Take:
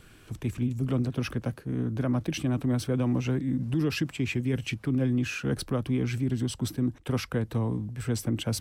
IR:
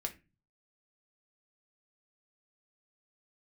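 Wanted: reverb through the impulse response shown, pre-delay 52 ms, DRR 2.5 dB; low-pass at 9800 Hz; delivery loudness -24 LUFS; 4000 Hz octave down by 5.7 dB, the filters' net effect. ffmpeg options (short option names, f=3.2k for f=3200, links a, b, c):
-filter_complex "[0:a]lowpass=9.8k,equalizer=f=4k:t=o:g=-8,asplit=2[a][b];[1:a]atrim=start_sample=2205,adelay=52[c];[b][c]afir=irnorm=-1:irlink=0,volume=-2.5dB[d];[a][d]amix=inputs=2:normalize=0,volume=3.5dB"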